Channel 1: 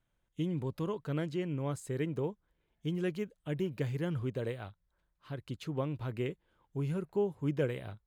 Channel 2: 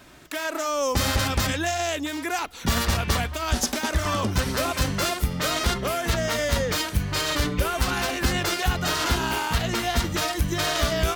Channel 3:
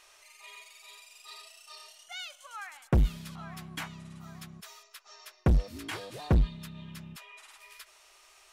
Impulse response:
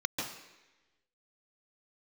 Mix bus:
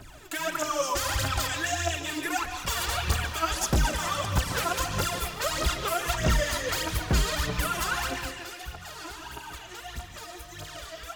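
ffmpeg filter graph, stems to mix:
-filter_complex "[0:a]volume=0.158[s0];[1:a]equalizer=f=220:w=2.3:g=-7,acrossover=split=500|1000[s1][s2][s3];[s1]acompressor=threshold=0.0126:ratio=4[s4];[s2]acompressor=threshold=0.01:ratio=4[s5];[s3]acompressor=threshold=0.0398:ratio=4[s6];[s4][s5][s6]amix=inputs=3:normalize=0,aphaser=in_gain=1:out_gain=1:delay=3.1:decay=0.77:speed=1.6:type=triangular,volume=0.841,afade=t=out:st=7.96:d=0.41:silence=0.251189,asplit=2[s7][s8];[s8]volume=0.237[s9];[2:a]adelay=800,volume=0.841[s10];[3:a]atrim=start_sample=2205[s11];[s9][s11]afir=irnorm=-1:irlink=0[s12];[s0][s7][s10][s12]amix=inputs=4:normalize=0"

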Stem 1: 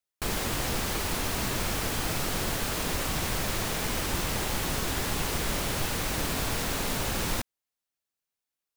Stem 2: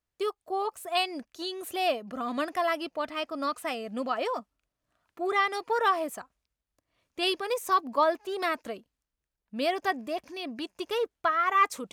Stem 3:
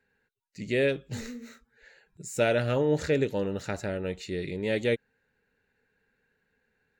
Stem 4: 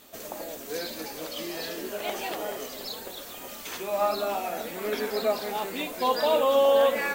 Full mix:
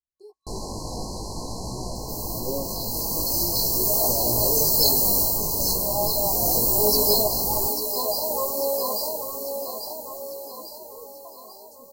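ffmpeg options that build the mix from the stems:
-filter_complex "[0:a]lowpass=7700,adelay=250,volume=1.26,asplit=2[s0][s1];[s1]volume=0.119[s2];[1:a]volume=0.2,asplit=2[s3][s4];[2:a]adelay=1700,volume=0.75[s5];[3:a]dynaudnorm=f=220:g=11:m=3.76,crystalizer=i=6:c=0,adelay=1950,volume=0.631,asplit=2[s6][s7];[s7]volume=0.335[s8];[s4]apad=whole_len=401258[s9];[s6][s9]sidechaincompress=threshold=0.00891:ratio=8:attack=8.5:release=1000[s10];[s2][s8]amix=inputs=2:normalize=0,aecho=0:1:845|1690|2535|3380|4225|5070|5915:1|0.51|0.26|0.133|0.0677|0.0345|0.0176[s11];[s0][s3][s5][s10][s11]amix=inputs=5:normalize=0,afftfilt=real='re*(1-between(b*sr/4096,1100,4000))':imag='im*(1-between(b*sr/4096,1100,4000))':win_size=4096:overlap=0.75,flanger=delay=16:depth=3.4:speed=0.49"

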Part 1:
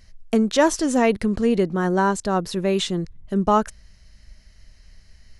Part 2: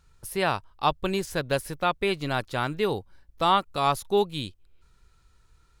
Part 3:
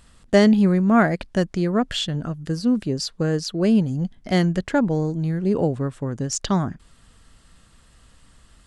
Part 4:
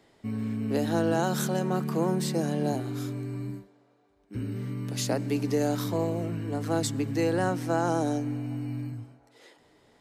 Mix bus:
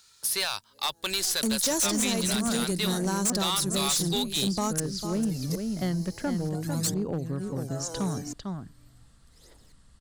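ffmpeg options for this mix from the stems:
-filter_complex "[0:a]bass=f=250:g=8,treble=f=4000:g=11,acrusher=bits=11:mix=0:aa=0.000001,adelay=1100,volume=0.501,asplit=2[s0][s1];[s1]volume=0.158[s2];[1:a]highpass=f=280:p=1,equalizer=f=3100:w=0.45:g=14,volume=0.562,asplit=2[s3][s4];[2:a]bass=f=250:g=5,treble=f=4000:g=-13,adelay=1500,volume=0.335,asplit=2[s5][s6];[s6]volume=0.422[s7];[3:a]aphaser=in_gain=1:out_gain=1:delay=2.9:decay=0.69:speed=0.42:type=triangular,aeval=exprs='val(0)*pow(10,-28*if(lt(mod(-0.72*n/s,1),2*abs(-0.72)/1000),1-mod(-0.72*n/s,1)/(2*abs(-0.72)/1000),(mod(-0.72*n/s,1)-2*abs(-0.72)/1000)/(1-2*abs(-0.72)/1000))/20)':c=same,volume=0.501[s8];[s4]apad=whole_len=441159[s9];[s8][s9]sidechaincompress=threshold=0.00891:ratio=6:attack=12:release=862[s10];[s2][s7]amix=inputs=2:normalize=0,aecho=0:1:449:1[s11];[s0][s3][s5][s10][s11]amix=inputs=5:normalize=0,acrossover=split=110|7500[s12][s13][s14];[s12]acompressor=threshold=0.00447:ratio=4[s15];[s13]acompressor=threshold=0.0562:ratio=4[s16];[s14]acompressor=threshold=0.00794:ratio=4[s17];[s15][s16][s17]amix=inputs=3:normalize=0,aexciter=amount=4:drive=5.9:freq=3900,asoftclip=type=hard:threshold=0.0794"

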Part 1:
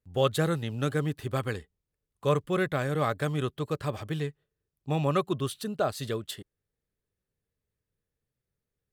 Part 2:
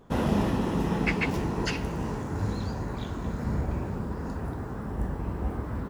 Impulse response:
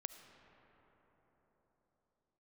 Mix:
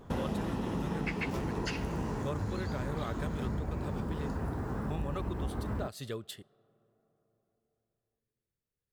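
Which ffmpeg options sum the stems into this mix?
-filter_complex "[0:a]volume=0.447,asplit=2[s0][s1];[s1]volume=0.133[s2];[1:a]volume=1.26[s3];[2:a]atrim=start_sample=2205[s4];[s2][s4]afir=irnorm=-1:irlink=0[s5];[s0][s3][s5]amix=inputs=3:normalize=0,acompressor=threshold=0.0282:ratio=6"

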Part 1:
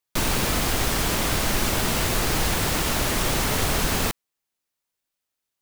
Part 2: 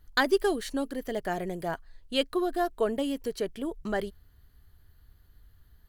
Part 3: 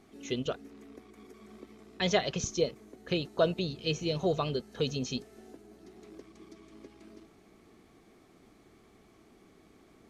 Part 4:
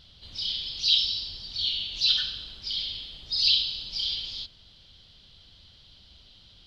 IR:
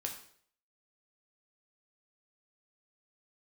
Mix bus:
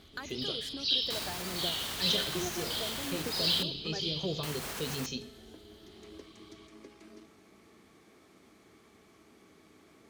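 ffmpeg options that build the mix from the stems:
-filter_complex "[0:a]alimiter=limit=0.119:level=0:latency=1:release=397,adelay=950,volume=0.562,asplit=3[s0][s1][s2];[s0]atrim=end=3.63,asetpts=PTS-STARTPTS,afade=t=out:st=3.626:d=0.004:c=hsin[s3];[s1]atrim=start=3.63:end=4.43,asetpts=PTS-STARTPTS,volume=0[s4];[s2]atrim=start=4.43,asetpts=PTS-STARTPTS,afade=t=in:d=0.004:c=hsin[s5];[s3][s4][s5]concat=n=3:v=0:a=1,asplit=2[s6][s7];[s7]volume=0.112[s8];[1:a]alimiter=limit=0.0794:level=0:latency=1,acompressor=threshold=0.0158:ratio=6,aphaser=in_gain=1:out_gain=1:delay=3:decay=0.5:speed=0.62:type=triangular,volume=0.631,asplit=2[s9][s10];[2:a]acrossover=split=400|3000[s11][s12][s13];[s12]acompressor=threshold=0.01:ratio=6[s14];[s11][s14][s13]amix=inputs=3:normalize=0,bandreject=f=730:w=12,volume=1.06,asplit=2[s15][s16];[s16]volume=0.473[s17];[3:a]highshelf=f=4100:g=-12,volume=0.531,asplit=2[s18][s19];[s19]volume=0.708[s20];[s10]apad=whole_len=445196[s21];[s15][s21]sidechaincompress=threshold=0.00282:ratio=8:attack=16:release=291[s22];[s6][s22]amix=inputs=2:normalize=0,lowshelf=f=470:g=-9.5,alimiter=level_in=2.11:limit=0.0631:level=0:latency=1:release=82,volume=0.473,volume=1[s23];[4:a]atrim=start_sample=2205[s24];[s8][s17][s20]amix=inputs=3:normalize=0[s25];[s25][s24]afir=irnorm=-1:irlink=0[s26];[s9][s18][s23][s26]amix=inputs=4:normalize=0,highpass=63"

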